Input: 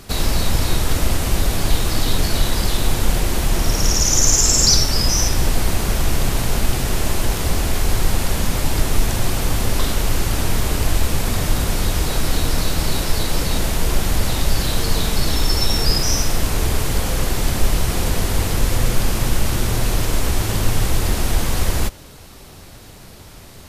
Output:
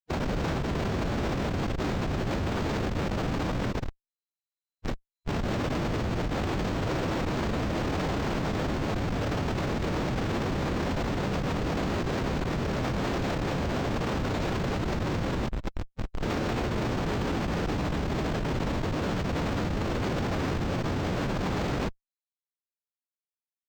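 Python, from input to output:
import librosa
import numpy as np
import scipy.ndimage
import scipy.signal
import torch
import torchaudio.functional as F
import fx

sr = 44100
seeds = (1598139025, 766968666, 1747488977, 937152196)

y = fx.octave_divider(x, sr, octaves=1, level_db=1.0)
y = scipy.signal.sosfilt(scipy.signal.butter(2, 190.0, 'highpass', fs=sr, output='sos'), y)
y = fx.over_compress(y, sr, threshold_db=-25.0, ratio=-0.5)
y = fx.echo_feedback(y, sr, ms=149, feedback_pct=31, wet_db=-12.0)
y = fx.schmitt(y, sr, flips_db=-20.0)
y = fx.pitch_keep_formants(y, sr, semitones=-3.5)
y = np.interp(np.arange(len(y)), np.arange(len(y))[::4], y[::4])
y = y * 10.0 ** (-2.5 / 20.0)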